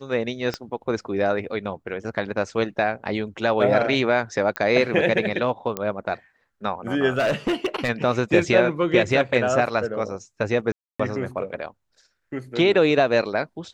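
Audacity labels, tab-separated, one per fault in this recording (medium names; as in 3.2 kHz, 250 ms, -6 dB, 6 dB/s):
0.540000	0.540000	pop -13 dBFS
4.560000	4.560000	pop -10 dBFS
5.770000	5.770000	pop -10 dBFS
7.180000	7.900000	clipped -18 dBFS
10.720000	10.990000	dropout 275 ms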